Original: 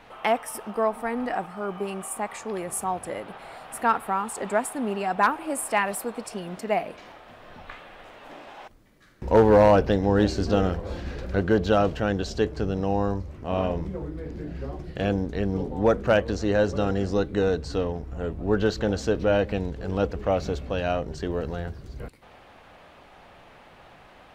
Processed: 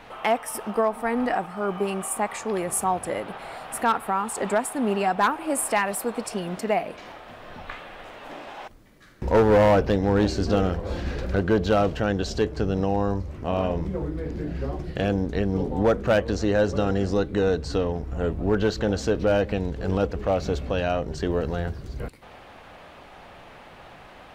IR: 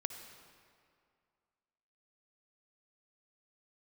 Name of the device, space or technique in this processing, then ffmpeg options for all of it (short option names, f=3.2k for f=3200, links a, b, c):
clipper into limiter: -af "asoftclip=type=hard:threshold=-13.5dB,alimiter=limit=-17.5dB:level=0:latency=1:release=329,volume=4.5dB"